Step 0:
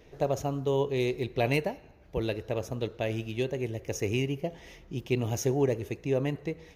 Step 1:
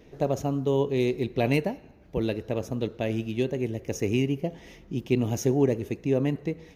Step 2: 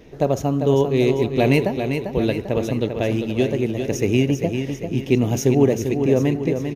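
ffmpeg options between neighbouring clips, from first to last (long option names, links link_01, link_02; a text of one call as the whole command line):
ffmpeg -i in.wav -af "equalizer=frequency=230:width_type=o:width=1.2:gain=8" out.wav
ffmpeg -i in.wav -af "aecho=1:1:396|792|1188|1584|1980|2376:0.447|0.232|0.121|0.0628|0.0327|0.017,volume=6.5dB" out.wav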